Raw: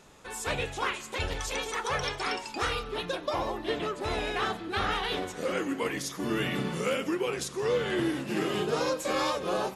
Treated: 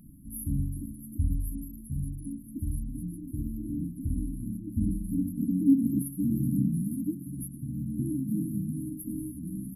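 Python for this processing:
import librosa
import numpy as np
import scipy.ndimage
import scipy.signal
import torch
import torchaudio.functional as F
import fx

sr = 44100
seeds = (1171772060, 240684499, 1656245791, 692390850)

y = fx.rider(x, sr, range_db=4, speed_s=2.0)
y = fx.brickwall_bandstop(y, sr, low_hz=310.0, high_hz=10000.0)
y = fx.peak_eq(y, sr, hz=230.0, db=7.5, octaves=0.88, at=(4.74, 6.02))
y = F.gain(torch.from_numpy(y), 7.5).numpy()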